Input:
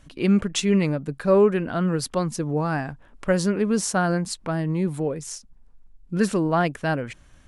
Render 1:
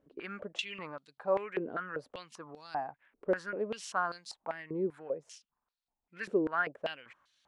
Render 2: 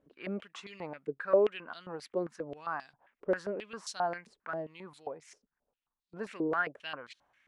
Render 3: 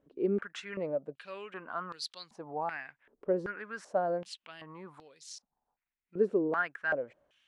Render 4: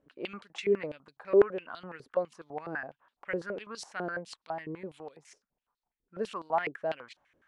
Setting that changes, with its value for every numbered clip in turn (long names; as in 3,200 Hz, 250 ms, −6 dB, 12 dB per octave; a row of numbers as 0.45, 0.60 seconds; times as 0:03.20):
band-pass on a step sequencer, speed: 5.1, 7.5, 2.6, 12 Hertz